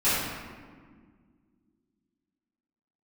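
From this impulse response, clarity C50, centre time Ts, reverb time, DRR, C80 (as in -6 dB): -2.5 dB, 105 ms, 1.7 s, -15.0 dB, 0.5 dB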